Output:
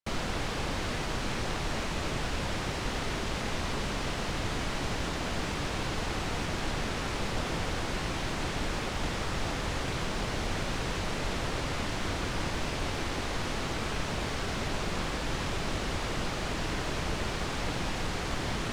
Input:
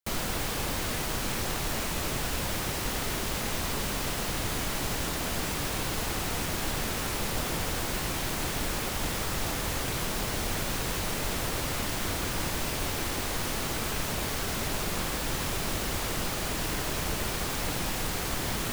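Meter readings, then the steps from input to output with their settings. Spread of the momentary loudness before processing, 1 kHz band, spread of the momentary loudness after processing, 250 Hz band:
0 LU, -0.5 dB, 0 LU, 0.0 dB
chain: distance through air 89 m

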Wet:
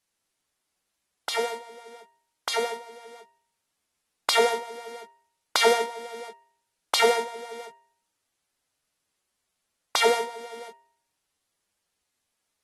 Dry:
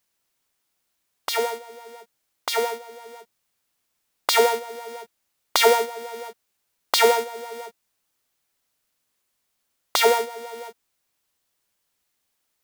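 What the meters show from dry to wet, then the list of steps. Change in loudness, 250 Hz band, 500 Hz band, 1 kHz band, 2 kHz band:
-3.0 dB, -1.0 dB, -3.5 dB, -3.5 dB, -2.0 dB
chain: de-hum 133.5 Hz, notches 22; trim -3.5 dB; AAC 32 kbps 48 kHz

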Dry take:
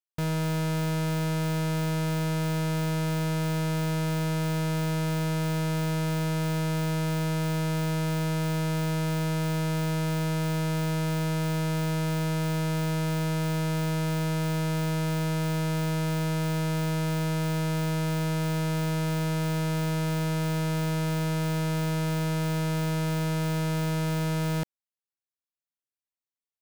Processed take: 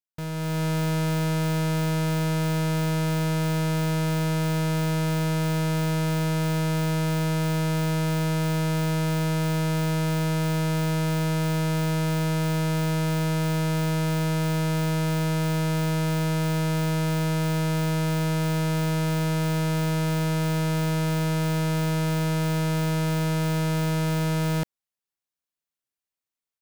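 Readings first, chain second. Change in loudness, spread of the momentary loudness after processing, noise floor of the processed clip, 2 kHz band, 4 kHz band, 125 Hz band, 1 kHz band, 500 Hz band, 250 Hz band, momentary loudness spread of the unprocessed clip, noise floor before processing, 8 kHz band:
+3.0 dB, 0 LU, under -85 dBFS, +3.0 dB, +3.0 dB, +3.0 dB, +3.0 dB, +3.0 dB, +3.0 dB, 0 LU, under -85 dBFS, +3.0 dB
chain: level rider gain up to 7.5 dB; trim -4.5 dB

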